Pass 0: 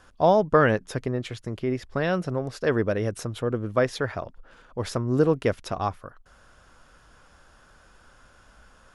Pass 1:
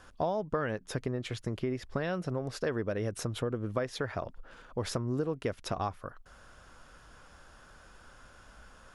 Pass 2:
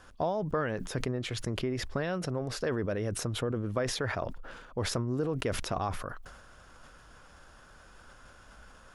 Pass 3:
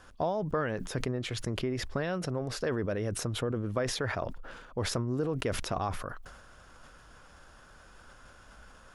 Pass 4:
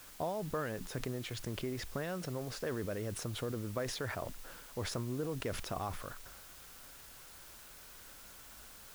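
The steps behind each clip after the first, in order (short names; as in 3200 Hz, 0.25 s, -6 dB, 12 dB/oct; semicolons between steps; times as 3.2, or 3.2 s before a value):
compressor 6:1, threshold -29 dBFS, peak gain reduction 14.5 dB
sustainer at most 45 dB/s
nothing audible
requantised 8-bit, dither triangular; gain -6.5 dB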